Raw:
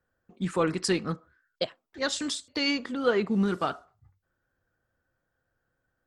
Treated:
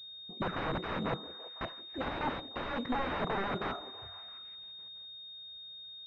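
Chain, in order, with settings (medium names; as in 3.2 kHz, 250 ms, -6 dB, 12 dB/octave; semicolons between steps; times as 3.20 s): integer overflow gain 29 dB; on a send: repeats whose band climbs or falls 167 ms, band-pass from 330 Hz, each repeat 0.7 oct, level -11 dB; on the sum: class-D stage that switches slowly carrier 3.7 kHz; trim +3.5 dB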